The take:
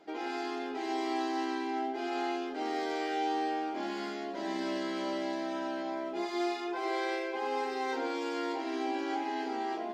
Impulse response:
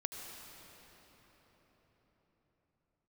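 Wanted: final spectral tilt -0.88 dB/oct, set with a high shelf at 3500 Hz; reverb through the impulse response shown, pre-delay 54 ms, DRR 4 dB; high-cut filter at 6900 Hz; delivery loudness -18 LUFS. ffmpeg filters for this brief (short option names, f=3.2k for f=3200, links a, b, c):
-filter_complex "[0:a]lowpass=6.9k,highshelf=f=3.5k:g=4.5,asplit=2[a][b];[1:a]atrim=start_sample=2205,adelay=54[c];[b][c]afir=irnorm=-1:irlink=0,volume=-4dB[d];[a][d]amix=inputs=2:normalize=0,volume=14.5dB"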